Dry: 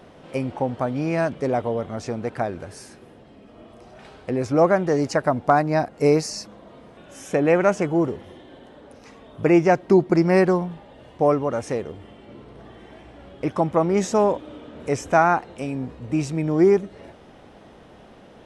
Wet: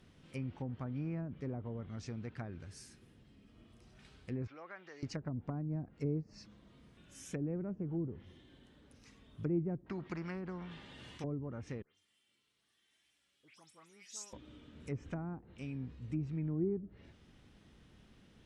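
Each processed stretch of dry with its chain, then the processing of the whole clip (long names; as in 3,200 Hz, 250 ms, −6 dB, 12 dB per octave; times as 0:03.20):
0:04.47–0:05.03: downward compressor 2 to 1, threshold −28 dBFS + band-pass filter 610–3,700 Hz + parametric band 2,800 Hz +3.5 dB 2.7 octaves
0:09.86–0:11.24: high-pass filter 320 Hz 6 dB per octave + every bin compressed towards the loudest bin 2 to 1
0:11.82–0:14.33: first difference + all-pass dispersion highs, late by 145 ms, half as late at 2,900 Hz
whole clip: treble cut that deepens with the level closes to 460 Hz, closed at −16.5 dBFS; guitar amp tone stack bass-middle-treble 6-0-2; level +5 dB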